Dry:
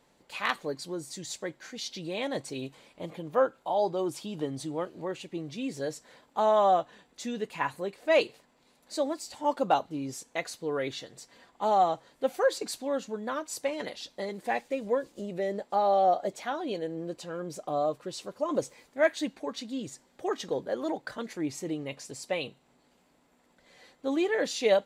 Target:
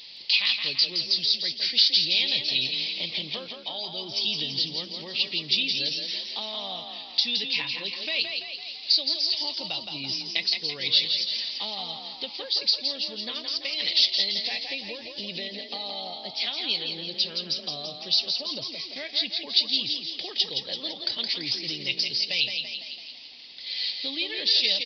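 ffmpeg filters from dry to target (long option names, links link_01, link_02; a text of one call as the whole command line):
ffmpeg -i in.wav -filter_complex "[0:a]aemphasis=mode=production:type=75kf,acrossover=split=160[link_01][link_02];[link_02]acompressor=threshold=-41dB:ratio=6[link_03];[link_01][link_03]amix=inputs=2:normalize=0,aexciter=amount=7.3:drive=9.9:freq=2300,aresample=11025,aresample=44100,asplit=8[link_04][link_05][link_06][link_07][link_08][link_09][link_10][link_11];[link_05]adelay=168,afreqshift=31,volume=-5.5dB[link_12];[link_06]adelay=336,afreqshift=62,volume=-10.5dB[link_13];[link_07]adelay=504,afreqshift=93,volume=-15.6dB[link_14];[link_08]adelay=672,afreqshift=124,volume=-20.6dB[link_15];[link_09]adelay=840,afreqshift=155,volume=-25.6dB[link_16];[link_10]adelay=1008,afreqshift=186,volume=-30.7dB[link_17];[link_11]adelay=1176,afreqshift=217,volume=-35.7dB[link_18];[link_04][link_12][link_13][link_14][link_15][link_16][link_17][link_18]amix=inputs=8:normalize=0" out.wav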